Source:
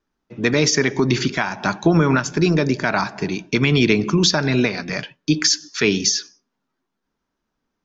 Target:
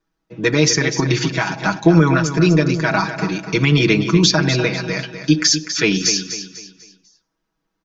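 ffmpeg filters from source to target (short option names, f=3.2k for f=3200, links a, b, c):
-filter_complex "[0:a]aecho=1:1:6.2:0.88,asplit=2[a][b];[b]aecho=0:1:248|496|744|992:0.316|0.114|0.041|0.0148[c];[a][c]amix=inputs=2:normalize=0,volume=-1dB"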